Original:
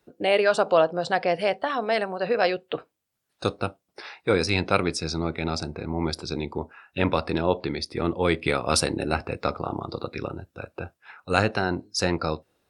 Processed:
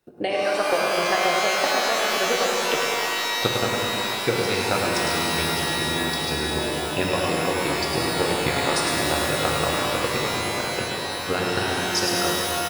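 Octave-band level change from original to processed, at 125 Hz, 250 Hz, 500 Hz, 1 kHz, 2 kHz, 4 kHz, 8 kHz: 0.0, +0.5, +0.5, +4.5, +6.0, +9.0, +9.0 dB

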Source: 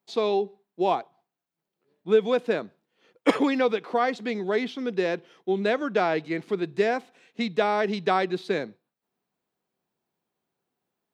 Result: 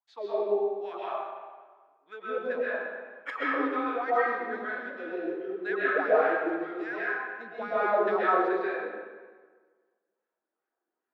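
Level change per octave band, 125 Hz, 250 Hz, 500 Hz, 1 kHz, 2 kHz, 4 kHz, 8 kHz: under -15 dB, -7.0 dB, -3.5 dB, -1.5 dB, +1.5 dB, -14.0 dB, n/a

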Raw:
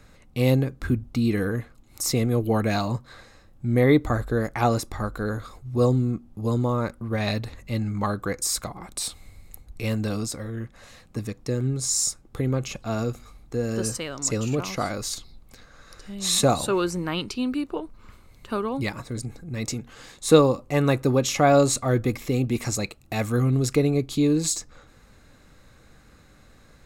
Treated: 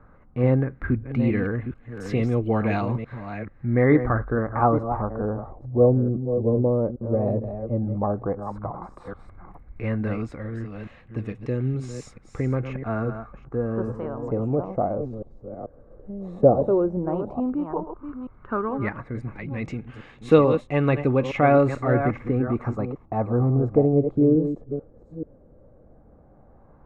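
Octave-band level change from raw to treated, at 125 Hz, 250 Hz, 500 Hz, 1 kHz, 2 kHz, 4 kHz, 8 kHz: +0.5 dB, +1.0 dB, +2.5 dB, +1.0 dB, -1.5 dB, under -15 dB, under -25 dB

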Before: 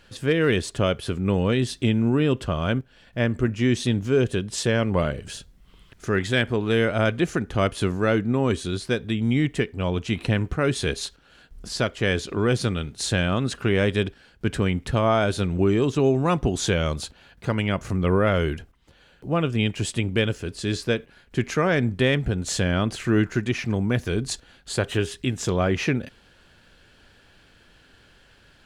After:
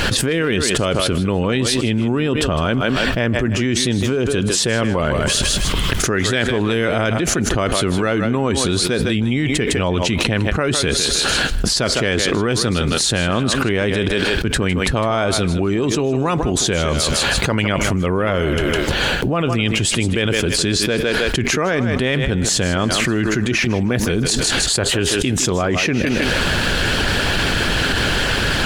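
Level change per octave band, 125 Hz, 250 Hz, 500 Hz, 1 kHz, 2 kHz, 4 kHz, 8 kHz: +4.0, +5.0, +5.0, +7.0, +9.5, +13.0, +14.5 dB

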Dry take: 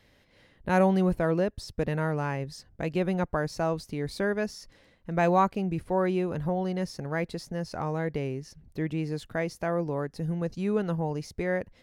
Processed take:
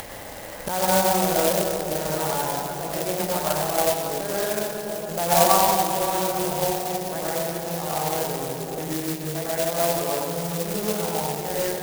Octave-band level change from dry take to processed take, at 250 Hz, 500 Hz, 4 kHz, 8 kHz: -1.0, +5.0, +15.0, +22.5 dB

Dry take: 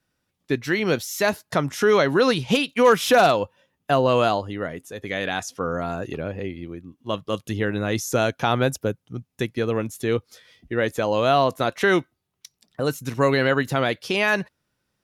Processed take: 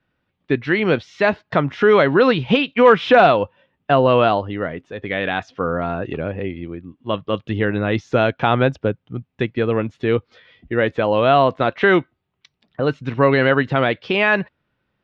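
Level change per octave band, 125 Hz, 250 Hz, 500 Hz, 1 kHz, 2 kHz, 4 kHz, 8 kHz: +4.5 dB, +4.5 dB, +4.5 dB, +4.5 dB, +4.5 dB, +1.0 dB, under -20 dB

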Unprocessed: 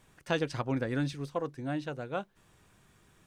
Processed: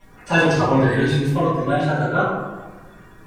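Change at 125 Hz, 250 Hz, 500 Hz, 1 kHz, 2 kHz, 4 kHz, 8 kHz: +16.5, +14.0, +14.5, +18.0, +18.0, +13.0, +13.5 dB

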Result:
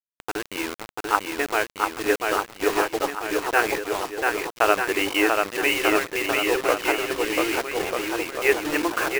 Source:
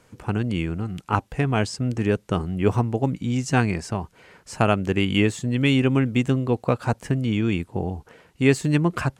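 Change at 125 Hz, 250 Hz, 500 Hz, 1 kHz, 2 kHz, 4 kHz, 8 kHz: -24.5, -6.5, +2.5, +5.0, +7.0, +4.5, +6.0 dB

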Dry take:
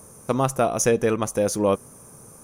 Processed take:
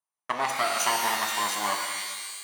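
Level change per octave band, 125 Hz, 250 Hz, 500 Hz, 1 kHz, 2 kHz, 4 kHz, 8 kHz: -23.5, -17.0, -14.0, +1.5, +5.5, +9.5, -1.0 dB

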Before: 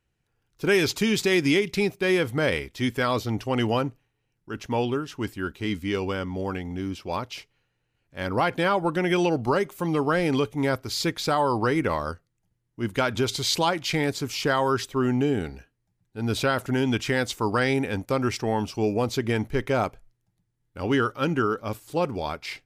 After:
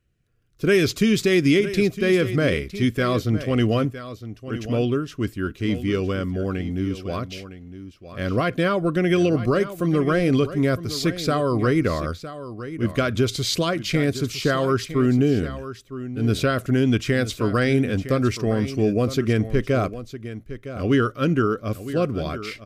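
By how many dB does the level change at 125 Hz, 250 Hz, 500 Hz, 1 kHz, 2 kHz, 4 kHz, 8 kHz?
+7.0, +5.0, +3.0, -2.5, +0.5, +0.5, 0.0 dB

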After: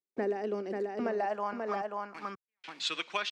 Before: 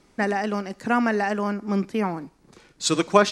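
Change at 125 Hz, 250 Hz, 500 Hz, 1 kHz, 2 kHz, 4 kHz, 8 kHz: under -15 dB, -15.5 dB, -9.0 dB, -10.0 dB, -11.5 dB, -5.5 dB, under -15 dB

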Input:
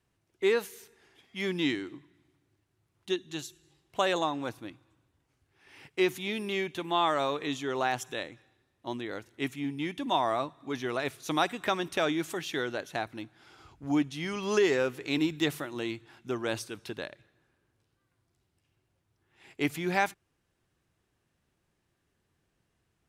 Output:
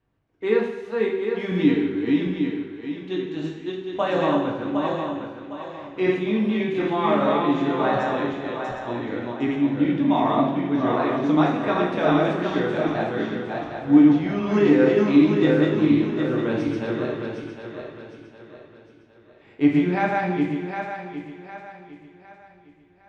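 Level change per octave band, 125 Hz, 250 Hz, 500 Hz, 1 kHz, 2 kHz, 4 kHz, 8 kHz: +13.0 dB, +14.5 dB, +9.0 dB, +7.0 dB, +4.5 dB, -0.5 dB, under -10 dB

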